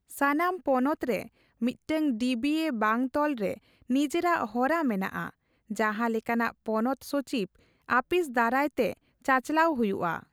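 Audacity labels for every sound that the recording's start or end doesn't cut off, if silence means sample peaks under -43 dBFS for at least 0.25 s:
1.610000	3.580000	sound
3.900000	5.300000	sound
5.700000	7.460000	sound
7.890000	8.930000	sound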